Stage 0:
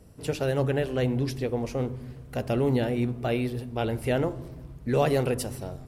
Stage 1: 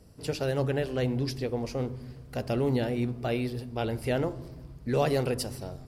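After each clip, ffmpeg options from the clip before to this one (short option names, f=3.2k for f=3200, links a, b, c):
-af "equalizer=f=4.8k:t=o:w=0.34:g=8.5,volume=-2.5dB"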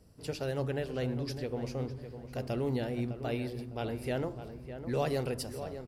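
-filter_complex "[0:a]asplit=2[a][b];[b]adelay=606,lowpass=f=2k:p=1,volume=-10dB,asplit=2[c][d];[d]adelay=606,lowpass=f=2k:p=1,volume=0.33,asplit=2[e][f];[f]adelay=606,lowpass=f=2k:p=1,volume=0.33,asplit=2[g][h];[h]adelay=606,lowpass=f=2k:p=1,volume=0.33[i];[a][c][e][g][i]amix=inputs=5:normalize=0,volume=-5.5dB"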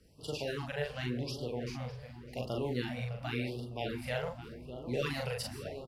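-filter_complex "[0:a]acrossover=split=130|3400[a][b][c];[b]crystalizer=i=7:c=0[d];[a][d][c]amix=inputs=3:normalize=0,asplit=2[e][f];[f]adelay=41,volume=-2.5dB[g];[e][g]amix=inputs=2:normalize=0,afftfilt=real='re*(1-between(b*sr/1024,280*pow(2000/280,0.5+0.5*sin(2*PI*0.89*pts/sr))/1.41,280*pow(2000/280,0.5+0.5*sin(2*PI*0.89*pts/sr))*1.41))':imag='im*(1-between(b*sr/1024,280*pow(2000/280,0.5+0.5*sin(2*PI*0.89*pts/sr))/1.41,280*pow(2000/280,0.5+0.5*sin(2*PI*0.89*pts/sr))*1.41))':win_size=1024:overlap=0.75,volume=-4dB"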